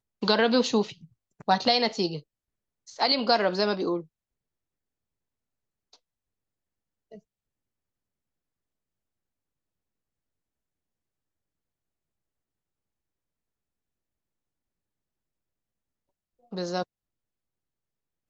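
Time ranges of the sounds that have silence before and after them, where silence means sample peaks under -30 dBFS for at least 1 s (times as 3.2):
16.53–16.83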